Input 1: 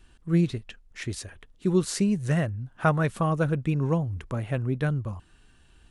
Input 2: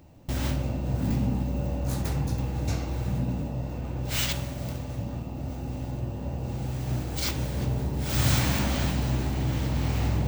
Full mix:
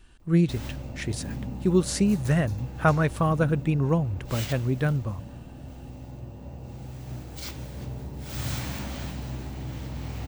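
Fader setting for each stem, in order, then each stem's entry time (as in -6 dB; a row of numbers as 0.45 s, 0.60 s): +1.5 dB, -8.0 dB; 0.00 s, 0.20 s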